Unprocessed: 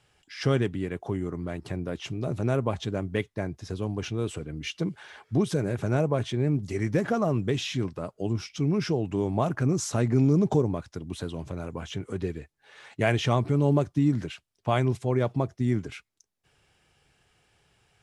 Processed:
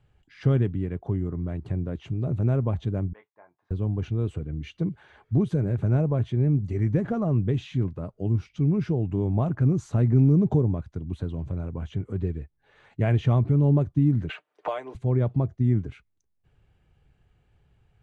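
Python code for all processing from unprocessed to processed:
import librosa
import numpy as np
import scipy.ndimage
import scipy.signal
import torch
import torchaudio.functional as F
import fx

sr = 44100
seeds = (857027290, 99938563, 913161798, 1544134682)

y = fx.chain(x, sr, fx.ladder_bandpass(hz=1100.0, resonance_pct=50),
    fx.doubler(ms=23.0, db=-7), at=(3.13, 3.71))
y = fx.chain(y, sr, fx.highpass(hz=430.0, slope=24),
    fx.comb(ms=6.6, depth=0.56),
    fx.band_squash(depth_pct=100), at=(14.29, 14.95))
y = fx.riaa(y, sr, side='playback')
y = fx.notch(y, sr, hz=5300.0, q=6.6)
y = y * 10.0 ** (-6.0 / 20.0)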